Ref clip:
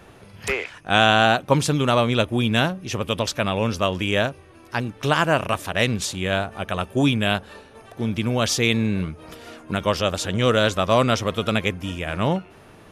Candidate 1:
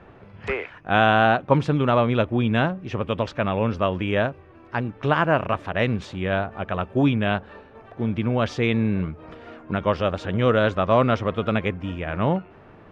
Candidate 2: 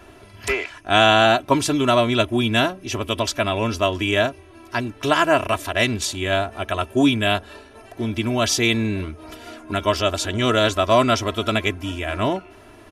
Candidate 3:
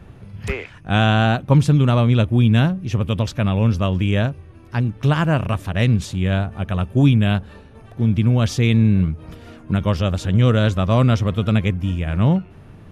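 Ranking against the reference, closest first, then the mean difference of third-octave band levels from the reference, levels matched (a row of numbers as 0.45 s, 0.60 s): 2, 1, 3; 2.0 dB, 5.0 dB, 7.0 dB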